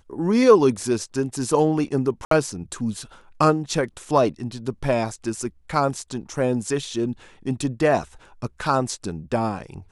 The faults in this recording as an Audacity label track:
2.250000	2.310000	dropout 63 ms

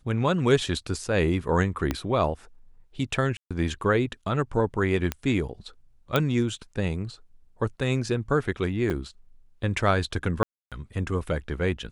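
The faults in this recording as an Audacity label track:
1.910000	1.910000	pop -12 dBFS
3.370000	3.510000	dropout 136 ms
5.120000	5.120000	pop -12 dBFS
6.160000	6.160000	pop -9 dBFS
8.900000	8.900000	dropout 4.5 ms
10.430000	10.720000	dropout 287 ms

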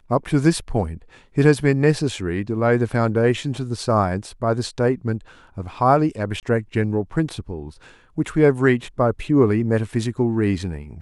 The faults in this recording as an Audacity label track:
6.400000	6.430000	dropout 28 ms

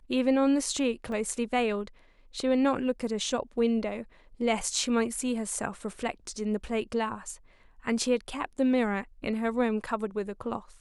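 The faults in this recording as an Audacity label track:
1.120000	1.120000	dropout 2.2 ms

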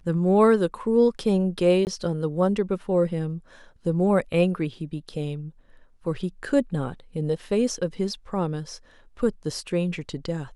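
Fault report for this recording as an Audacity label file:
1.850000	1.870000	dropout 19 ms

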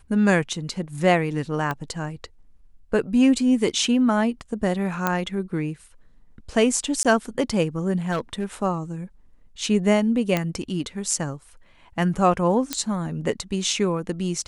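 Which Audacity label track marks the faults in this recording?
1.710000	1.710000	pop -14 dBFS
5.070000	5.070000	pop -7 dBFS
7.030000	7.050000	dropout 17 ms
8.110000	8.440000	clipped -19.5 dBFS
10.370000	10.370000	pop -8 dBFS
12.730000	12.730000	pop -7 dBFS

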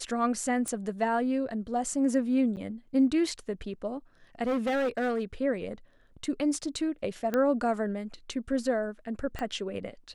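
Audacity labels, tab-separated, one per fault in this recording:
0.680000	0.680000	pop -20 dBFS
2.560000	2.570000	dropout 9.1 ms
4.460000	5.230000	clipped -24.5 dBFS
7.340000	7.340000	pop -16 dBFS
9.390000	9.390000	pop -20 dBFS

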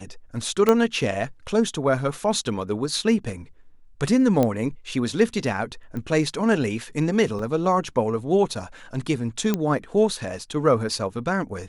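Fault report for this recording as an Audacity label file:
0.690000	0.690000	pop -6 dBFS
4.430000	4.430000	pop -9 dBFS
5.970000	5.970000	pop -21 dBFS
7.390000	7.390000	dropout 3.3 ms
9.540000	9.540000	pop -9 dBFS

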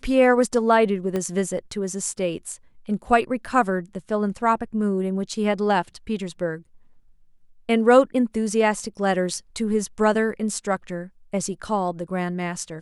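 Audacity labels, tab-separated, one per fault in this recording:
1.160000	1.160000	pop -14 dBFS

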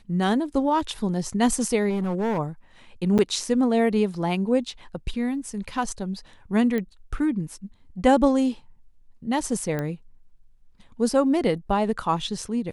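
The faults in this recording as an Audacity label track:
1.890000	2.390000	clipped -22 dBFS
3.180000	3.190000	dropout 8.2 ms
6.780000	6.780000	pop -16 dBFS
9.790000	9.790000	pop -16 dBFS

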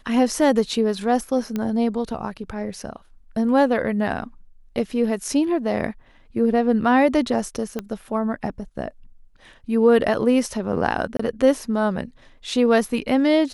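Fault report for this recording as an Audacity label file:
1.560000	1.560000	pop -13 dBFS
7.790000	7.790000	pop -14 dBFS
11.170000	11.190000	dropout 24 ms

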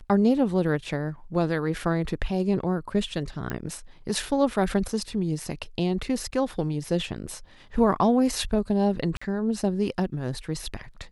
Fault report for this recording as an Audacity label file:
3.500000	3.500000	pop -16 dBFS
9.170000	9.210000	dropout 45 ms

